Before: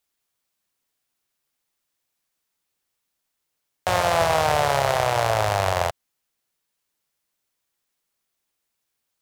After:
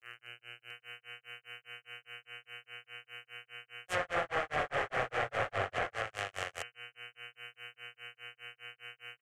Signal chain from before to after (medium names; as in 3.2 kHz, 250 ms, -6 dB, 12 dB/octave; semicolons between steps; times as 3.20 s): mains buzz 120 Hz, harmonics 25, -45 dBFS 0 dB/octave; tilt EQ +3.5 dB/octave; static phaser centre 930 Hz, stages 6; on a send: multi-tap echo 41/92/118/258/704 ms -9.5/-12.5/-9/-9/-4.5 dB; on the sum: hard clipper -17.5 dBFS, distortion -9 dB; granulator 196 ms, grains 4.9 per s, spray 38 ms, pitch spread up and down by 0 st; graphic EQ with 31 bands 125 Hz +4 dB, 630 Hz -10 dB, 3.15 kHz +8 dB, 5 kHz -4 dB, 8 kHz +3 dB; low-pass that closes with the level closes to 1.8 kHz, closed at -26.5 dBFS; band-stop 1.5 kHz, Q 21; trim -2 dB